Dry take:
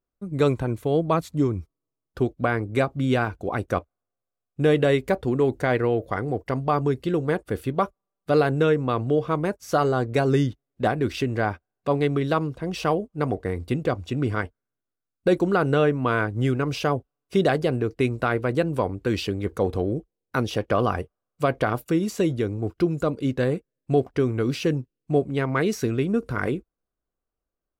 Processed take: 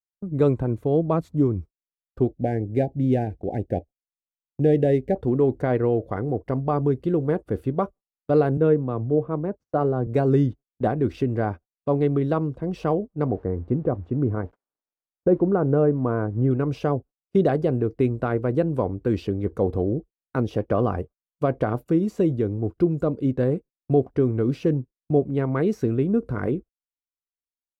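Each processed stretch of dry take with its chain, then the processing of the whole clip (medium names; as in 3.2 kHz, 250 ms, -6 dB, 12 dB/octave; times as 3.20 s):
2.32–5.16 s: median filter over 9 samples + elliptic band-stop 810–1700 Hz, stop band 50 dB
8.57–10.07 s: low-pass 2.9 kHz 6 dB/octave + treble shelf 2.2 kHz -7 dB + three bands expanded up and down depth 100%
13.27–16.51 s: zero-crossing glitches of -26.5 dBFS + low-pass 1.2 kHz
whole clip: bass shelf 210 Hz -2.5 dB; gate -40 dBFS, range -28 dB; tilt shelf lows +9.5 dB, about 1.2 kHz; trim -5.5 dB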